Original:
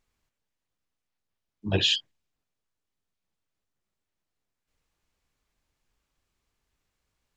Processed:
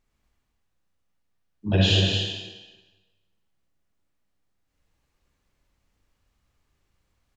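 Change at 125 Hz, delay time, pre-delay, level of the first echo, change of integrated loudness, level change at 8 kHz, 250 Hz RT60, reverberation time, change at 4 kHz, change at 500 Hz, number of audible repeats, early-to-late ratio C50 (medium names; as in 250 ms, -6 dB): +11.5 dB, 232 ms, 35 ms, -5.0 dB, +3.0 dB, +2.0 dB, 1.2 s, 1.3 s, +2.5 dB, +5.5 dB, 1, -2.5 dB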